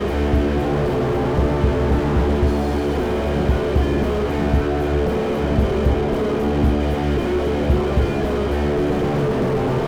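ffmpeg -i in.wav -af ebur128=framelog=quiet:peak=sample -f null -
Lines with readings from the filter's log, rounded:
Integrated loudness:
  I:         -19.7 LUFS
  Threshold: -29.7 LUFS
Loudness range:
  LRA:         0.5 LU
  Threshold: -39.7 LUFS
  LRA low:   -20.0 LUFS
  LRA high:  -19.5 LUFS
Sample peak:
  Peak:       -6.0 dBFS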